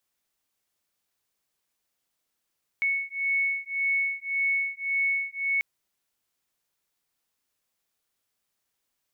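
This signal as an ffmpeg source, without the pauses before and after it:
ffmpeg -f lavfi -i "aevalsrc='0.0422*(sin(2*PI*2210*t)+sin(2*PI*2211.8*t))':duration=2.79:sample_rate=44100" out.wav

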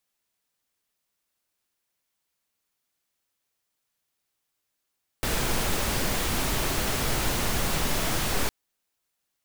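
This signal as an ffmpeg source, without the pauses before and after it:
ffmpeg -f lavfi -i "anoisesrc=color=pink:amplitude=0.257:duration=3.26:sample_rate=44100:seed=1" out.wav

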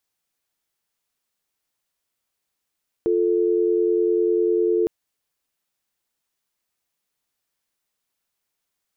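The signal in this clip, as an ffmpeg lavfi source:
ffmpeg -f lavfi -i "aevalsrc='0.106*(sin(2*PI*350*t)+sin(2*PI*440*t))':duration=1.81:sample_rate=44100" out.wav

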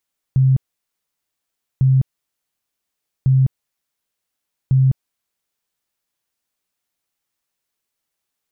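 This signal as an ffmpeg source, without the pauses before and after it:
ffmpeg -f lavfi -i "aevalsrc='0.316*sin(2*PI*132*mod(t,1.45))*lt(mod(t,1.45),27/132)':duration=5.8:sample_rate=44100" out.wav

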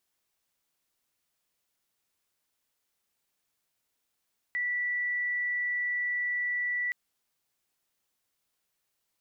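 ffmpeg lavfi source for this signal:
ffmpeg -f lavfi -i "sine=frequency=1960:duration=2.37:sample_rate=44100,volume=-9.44dB" out.wav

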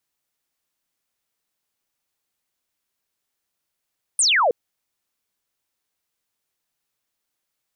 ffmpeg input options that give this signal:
ffmpeg -f lavfi -i "aevalsrc='0.188*clip(t/0.002,0,1)*clip((0.32-t)/0.002,0,1)*sin(2*PI*9800*0.32/log(440/9800)*(exp(log(440/9800)*t/0.32)-1))':duration=0.32:sample_rate=44100" out.wav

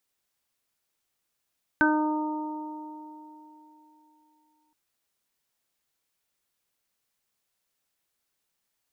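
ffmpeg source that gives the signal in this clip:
ffmpeg -f lavfi -i "aevalsrc='0.0891*pow(10,-3*t/3.33)*sin(2*PI*306*t)+0.0282*pow(10,-3*t/2.7)*sin(2*PI*612*t)+0.0596*pow(10,-3*t/3.78)*sin(2*PI*918*t)+0.0224*pow(10,-3*t/2.03)*sin(2*PI*1224*t)+0.141*pow(10,-3*t/0.39)*sin(2*PI*1530*t)':duration=2.92:sample_rate=44100" out.wav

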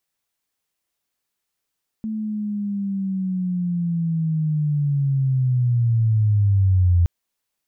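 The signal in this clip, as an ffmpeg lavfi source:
ffmpeg -f lavfi -i "aevalsrc='pow(10,(-23.5+11*t/5.02)/20)*sin(2*PI*(220*t-135*t*t/(2*5.02)))':duration=5.02:sample_rate=44100" out.wav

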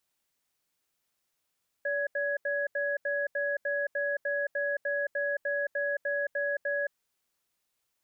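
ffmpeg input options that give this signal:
ffmpeg -f lavfi -i "aevalsrc='0.0316*(sin(2*PI*574*t)+sin(2*PI*1670*t))*clip(min(mod(t,0.3),0.22-mod(t,0.3))/0.005,0,1)':duration=5.06:sample_rate=44100" out.wav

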